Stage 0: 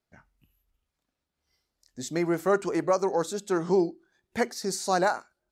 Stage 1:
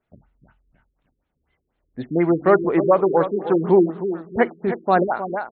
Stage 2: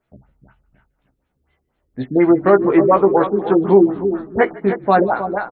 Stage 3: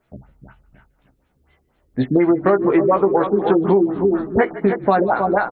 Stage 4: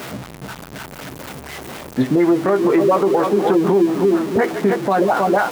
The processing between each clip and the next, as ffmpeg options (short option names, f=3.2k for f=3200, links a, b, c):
-filter_complex "[0:a]equalizer=f=4.1k:t=o:w=0.36:g=-8,asplit=2[a][b];[b]aecho=0:1:311|622|933|1244:0.299|0.122|0.0502|0.0206[c];[a][c]amix=inputs=2:normalize=0,afftfilt=real='re*lt(b*sr/1024,440*pow(4400/440,0.5+0.5*sin(2*PI*4.1*pts/sr)))':imag='im*lt(b*sr/1024,440*pow(4400/440,0.5+0.5*sin(2*PI*4.1*pts/sr)))':win_size=1024:overlap=0.75,volume=8.5dB"
-filter_complex "[0:a]asplit=2[a][b];[b]adelay=15,volume=-5dB[c];[a][c]amix=inputs=2:normalize=0,asplit=4[d][e][f][g];[e]adelay=151,afreqshift=-55,volume=-22.5dB[h];[f]adelay=302,afreqshift=-110,volume=-28.7dB[i];[g]adelay=453,afreqshift=-165,volume=-34.9dB[j];[d][h][i][j]amix=inputs=4:normalize=0,alimiter=level_in=4.5dB:limit=-1dB:release=50:level=0:latency=1,volume=-1dB"
-af "acompressor=threshold=-19dB:ratio=6,volume=6.5dB"
-af "aeval=exprs='val(0)+0.5*0.0501*sgn(val(0))':c=same,highpass=130,alimiter=limit=-8.5dB:level=0:latency=1:release=35,volume=1.5dB"